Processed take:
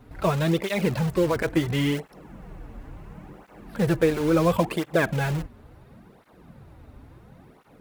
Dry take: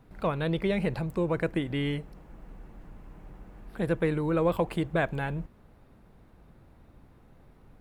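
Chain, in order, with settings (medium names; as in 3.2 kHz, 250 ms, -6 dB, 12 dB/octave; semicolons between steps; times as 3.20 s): in parallel at -9.5 dB: integer overflow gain 30.5 dB; on the sum: cancelling through-zero flanger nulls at 0.72 Hz, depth 6.3 ms; trim +8 dB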